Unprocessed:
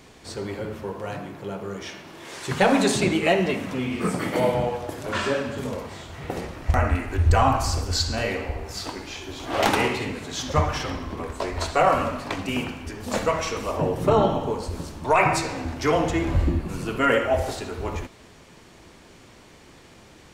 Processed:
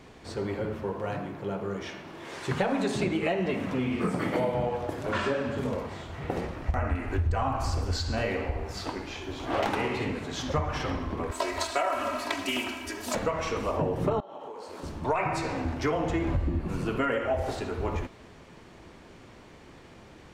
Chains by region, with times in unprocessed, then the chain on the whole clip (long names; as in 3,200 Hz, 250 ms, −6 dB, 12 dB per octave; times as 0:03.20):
0:11.31–0:13.15: RIAA equalisation recording + comb filter 3.1 ms, depth 90% + highs frequency-modulated by the lows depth 0.11 ms
0:14.20–0:14.83: high-pass filter 460 Hz + downward compressor 20 to 1, threshold −36 dBFS + double-tracking delay 21 ms −12 dB
whole clip: downward compressor 10 to 1, threshold −23 dBFS; high-shelf EQ 4,000 Hz −11 dB